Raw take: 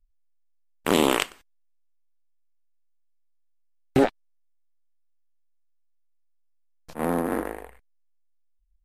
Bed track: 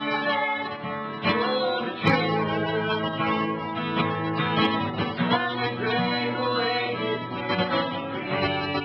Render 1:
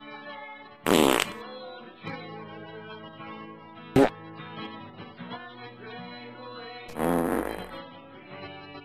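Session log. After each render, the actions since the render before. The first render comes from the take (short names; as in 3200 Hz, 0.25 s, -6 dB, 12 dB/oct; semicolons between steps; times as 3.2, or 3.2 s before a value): add bed track -16.5 dB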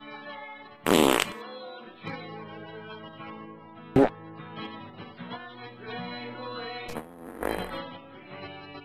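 1.33–1.87 HPF 180 Hz; 3.3–4.56 high shelf 2500 Hz -11 dB; 5.88–7.97 negative-ratio compressor -33 dBFS, ratio -0.5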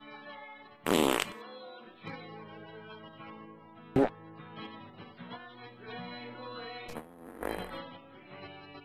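gain -6 dB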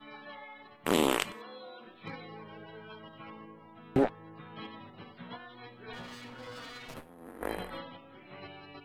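5.93–7.09 minimum comb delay 7.6 ms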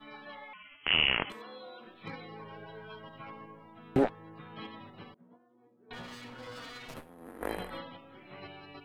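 0.53–1.3 inverted band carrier 3200 Hz; 2.39–3.62 comb 7.4 ms, depth 48%; 5.14–5.91 ladder band-pass 330 Hz, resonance 20%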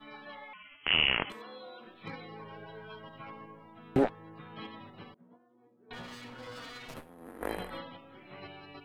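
nothing audible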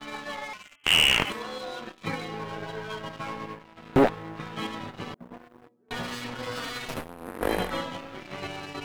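reverse; upward compressor, threshold -41 dBFS; reverse; sample leveller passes 3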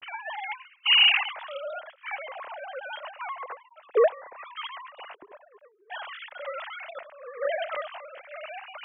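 sine-wave speech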